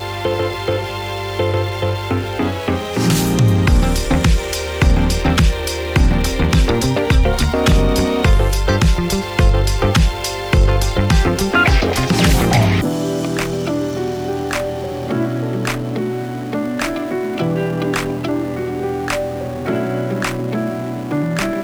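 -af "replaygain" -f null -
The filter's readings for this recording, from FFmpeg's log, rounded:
track_gain = -0.4 dB
track_peak = 0.543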